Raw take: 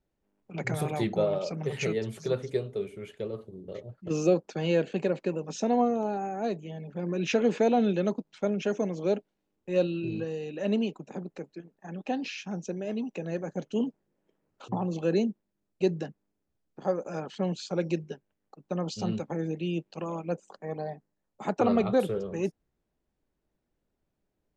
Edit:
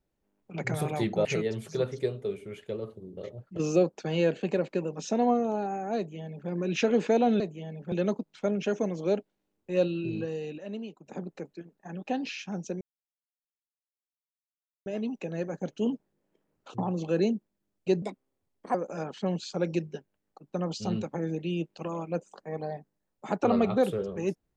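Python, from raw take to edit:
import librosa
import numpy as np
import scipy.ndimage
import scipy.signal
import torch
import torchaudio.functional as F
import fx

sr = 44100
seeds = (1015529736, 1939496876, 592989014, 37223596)

y = fx.edit(x, sr, fx.cut(start_s=1.25, length_s=0.51),
    fx.duplicate(start_s=6.48, length_s=0.52, to_s=7.91),
    fx.clip_gain(start_s=10.57, length_s=0.48, db=-10.5),
    fx.insert_silence(at_s=12.8, length_s=2.05),
    fx.speed_span(start_s=15.96, length_s=0.95, speed=1.31), tone=tone)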